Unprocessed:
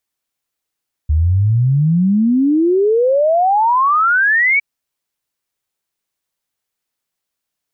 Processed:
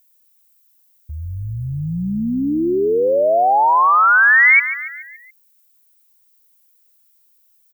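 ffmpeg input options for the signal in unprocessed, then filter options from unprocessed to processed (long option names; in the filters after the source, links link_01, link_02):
-f lavfi -i "aevalsrc='0.316*clip(min(t,3.51-t)/0.01,0,1)*sin(2*PI*73*3.51/log(2300/73)*(exp(log(2300/73)*t/3.51)-1))':duration=3.51:sample_rate=44100"
-filter_complex "[0:a]aemphasis=mode=production:type=riaa,asplit=6[link_01][link_02][link_03][link_04][link_05][link_06];[link_02]adelay=142,afreqshift=-35,volume=-12.5dB[link_07];[link_03]adelay=284,afreqshift=-70,volume=-18dB[link_08];[link_04]adelay=426,afreqshift=-105,volume=-23.5dB[link_09];[link_05]adelay=568,afreqshift=-140,volume=-29dB[link_10];[link_06]adelay=710,afreqshift=-175,volume=-34.6dB[link_11];[link_01][link_07][link_08][link_09][link_10][link_11]amix=inputs=6:normalize=0"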